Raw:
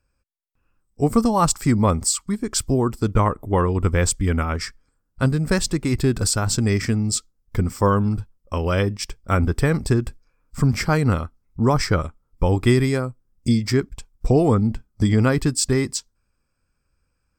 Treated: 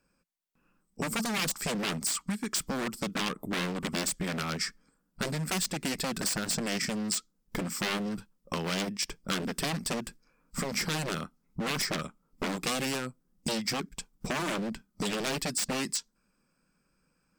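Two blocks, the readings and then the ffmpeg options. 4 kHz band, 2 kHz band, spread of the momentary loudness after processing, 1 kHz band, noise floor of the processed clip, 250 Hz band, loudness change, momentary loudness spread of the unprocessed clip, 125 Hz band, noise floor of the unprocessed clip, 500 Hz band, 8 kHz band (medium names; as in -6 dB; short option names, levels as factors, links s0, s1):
-2.0 dB, -5.0 dB, 7 LU, -11.0 dB, -75 dBFS, -12.5 dB, -11.0 dB, 9 LU, -19.0 dB, -72 dBFS, -13.5 dB, -7.0 dB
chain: -filter_complex "[0:a]aeval=exprs='0.112*(abs(mod(val(0)/0.112+3,4)-2)-1)':c=same,lowshelf=f=130:t=q:w=3:g=-10.5,acrossover=split=1300|2600[s0][s1][s2];[s0]acompressor=threshold=0.0158:ratio=4[s3];[s1]acompressor=threshold=0.00708:ratio=4[s4];[s2]acompressor=threshold=0.0251:ratio=4[s5];[s3][s4][s5]amix=inputs=3:normalize=0,volume=1.26"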